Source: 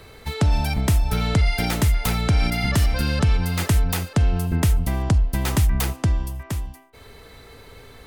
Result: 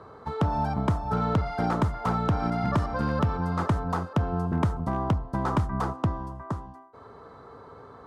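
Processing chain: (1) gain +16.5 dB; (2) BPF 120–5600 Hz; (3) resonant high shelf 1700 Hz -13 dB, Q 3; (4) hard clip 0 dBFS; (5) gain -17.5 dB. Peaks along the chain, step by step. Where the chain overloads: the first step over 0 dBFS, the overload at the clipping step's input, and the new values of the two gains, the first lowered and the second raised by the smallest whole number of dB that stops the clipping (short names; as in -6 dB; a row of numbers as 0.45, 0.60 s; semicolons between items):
+5.0, +6.0, +7.5, 0.0, -17.5 dBFS; step 1, 7.5 dB; step 1 +8.5 dB, step 5 -9.5 dB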